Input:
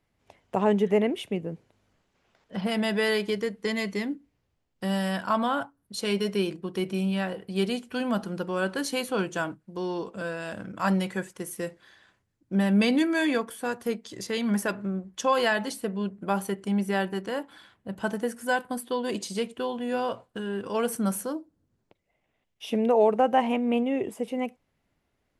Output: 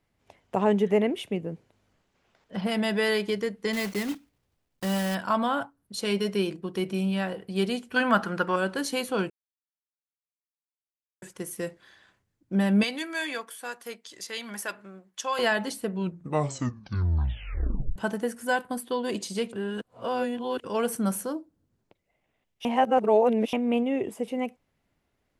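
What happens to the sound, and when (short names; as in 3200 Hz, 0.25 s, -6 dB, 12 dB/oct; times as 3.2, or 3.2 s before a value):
3.73–5.16 block floating point 3-bit
7.96–8.56 bell 1500 Hz +14 dB 1.7 oct
9.3–11.22 mute
12.83–15.39 HPF 1400 Hz 6 dB/oct
15.9 tape stop 2.06 s
19.53–20.64 reverse
22.65–23.53 reverse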